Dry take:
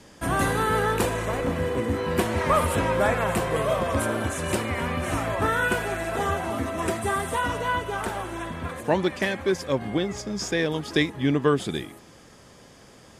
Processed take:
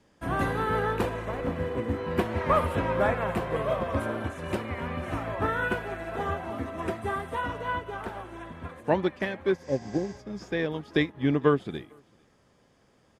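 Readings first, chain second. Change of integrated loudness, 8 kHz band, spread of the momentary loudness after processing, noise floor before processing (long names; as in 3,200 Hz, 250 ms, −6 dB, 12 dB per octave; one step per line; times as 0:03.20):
−3.5 dB, −18.0 dB, 10 LU, −51 dBFS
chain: high-shelf EQ 4,200 Hz −8.5 dB
healed spectral selection 0:09.62–0:10.17, 880–8,600 Hz before
dynamic equaliser 8,200 Hz, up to −8 dB, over −52 dBFS, Q 0.88
single-tap delay 451 ms −22.5 dB
expander for the loud parts 1.5 to 1, over −42 dBFS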